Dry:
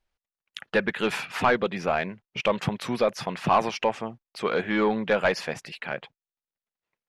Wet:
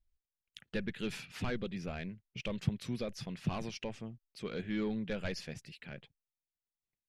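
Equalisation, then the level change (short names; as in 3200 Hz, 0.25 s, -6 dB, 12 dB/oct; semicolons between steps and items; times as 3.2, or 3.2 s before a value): dynamic EQ 5000 Hz, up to +3 dB, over -41 dBFS, Q 1; passive tone stack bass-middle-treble 10-0-1; +9.5 dB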